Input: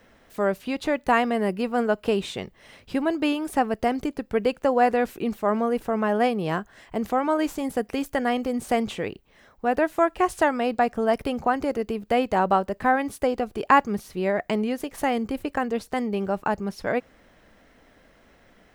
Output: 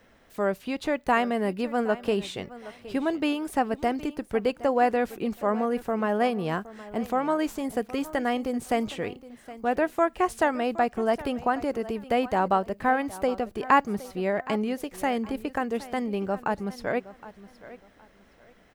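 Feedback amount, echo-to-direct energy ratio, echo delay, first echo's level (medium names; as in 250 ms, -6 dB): 25%, -17.0 dB, 767 ms, -17.0 dB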